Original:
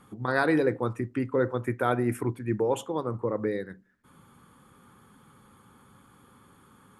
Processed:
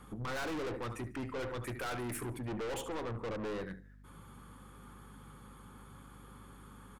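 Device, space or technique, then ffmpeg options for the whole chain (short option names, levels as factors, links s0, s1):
valve amplifier with mains hum: -filter_complex "[0:a]asettb=1/sr,asplit=3[s0][s1][s2];[s0]atrim=end=0.734[s3];[s1]atrim=start=0.73:end=2.38,asetpts=PTS-STARTPTS,afade=t=in:d=0.004:c=qsin,afade=t=out:st=1.646:d=0.004:c=qsin,tiltshelf=f=1300:g=-4.5[s4];[s2]atrim=start=2.376[s5];[s3][s4]acrossfade=d=0.004:c1=hsin:c2=qsin[s6];[s6][s5]acrossfade=d=0.004:c1=qsin:c2=hsin,aecho=1:1:73|146|219:0.15|0.0434|0.0126,aeval=exprs='(tanh(79.4*val(0)+0.25)-tanh(0.25))/79.4':c=same,aeval=exprs='val(0)+0.00141*(sin(2*PI*50*n/s)+sin(2*PI*2*50*n/s)/2+sin(2*PI*3*50*n/s)/3+sin(2*PI*4*50*n/s)/4+sin(2*PI*5*50*n/s)/5)':c=same,volume=1.19"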